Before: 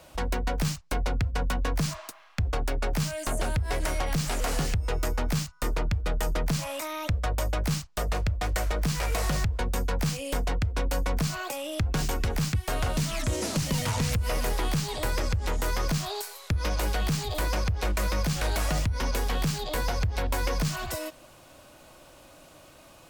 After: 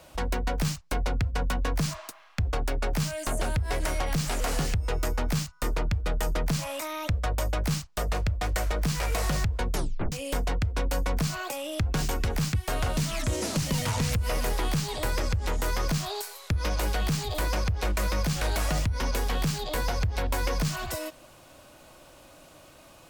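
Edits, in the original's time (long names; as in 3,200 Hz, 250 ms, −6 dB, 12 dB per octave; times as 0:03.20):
0:09.68: tape stop 0.44 s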